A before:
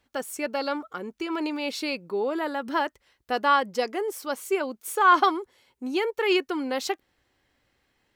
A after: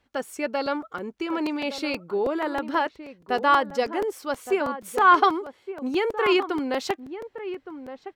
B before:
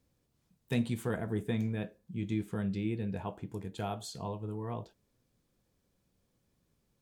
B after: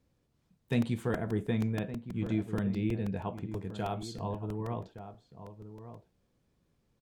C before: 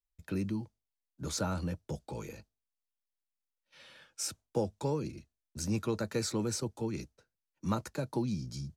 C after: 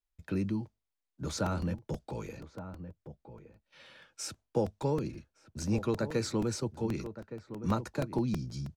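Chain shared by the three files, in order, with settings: low-pass 3.9 kHz 6 dB/octave; echo from a far wall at 200 m, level -11 dB; crackling interface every 0.16 s, samples 128, repeat, from 0.66 s; trim +2 dB

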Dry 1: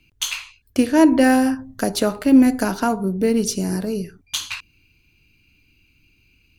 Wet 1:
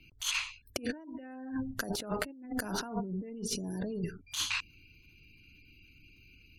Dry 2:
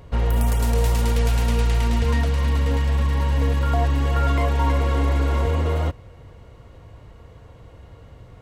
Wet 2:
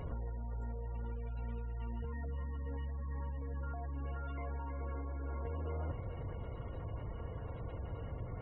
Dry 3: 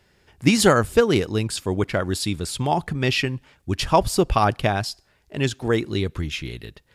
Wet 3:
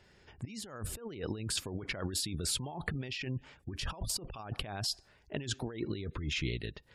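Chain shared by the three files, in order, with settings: spectral gate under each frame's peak -30 dB strong; compressor with a negative ratio -30 dBFS, ratio -1; trim -9 dB

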